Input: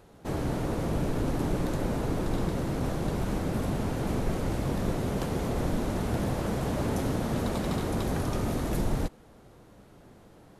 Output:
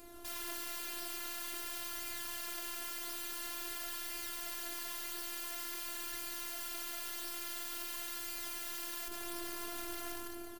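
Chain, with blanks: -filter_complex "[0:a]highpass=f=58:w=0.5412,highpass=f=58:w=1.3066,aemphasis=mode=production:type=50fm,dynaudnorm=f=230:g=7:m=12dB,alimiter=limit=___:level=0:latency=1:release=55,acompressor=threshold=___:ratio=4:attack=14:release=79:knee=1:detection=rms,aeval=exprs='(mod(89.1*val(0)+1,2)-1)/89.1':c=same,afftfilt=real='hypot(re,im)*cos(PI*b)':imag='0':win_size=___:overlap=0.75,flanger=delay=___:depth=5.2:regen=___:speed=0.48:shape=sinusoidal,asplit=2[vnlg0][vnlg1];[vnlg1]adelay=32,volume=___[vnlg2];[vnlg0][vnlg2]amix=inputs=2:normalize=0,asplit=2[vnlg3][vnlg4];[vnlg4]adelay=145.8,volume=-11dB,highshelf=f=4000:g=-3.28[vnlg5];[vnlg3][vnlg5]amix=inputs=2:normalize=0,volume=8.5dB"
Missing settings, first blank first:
-14.5dB, -34dB, 512, 0.4, 63, -9.5dB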